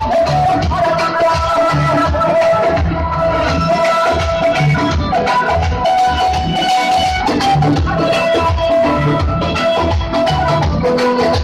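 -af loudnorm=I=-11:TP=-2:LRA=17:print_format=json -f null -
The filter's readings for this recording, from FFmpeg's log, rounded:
"input_i" : "-13.7",
"input_tp" : "-5.9",
"input_lra" : "0.7",
"input_thresh" : "-23.7",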